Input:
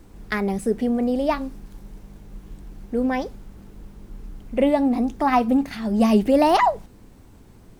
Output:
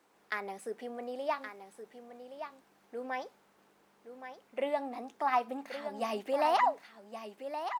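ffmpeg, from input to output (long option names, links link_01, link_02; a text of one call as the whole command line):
ffmpeg -i in.wav -af "highpass=690,highshelf=frequency=3400:gain=-7,aecho=1:1:1121:0.335,volume=-7dB" out.wav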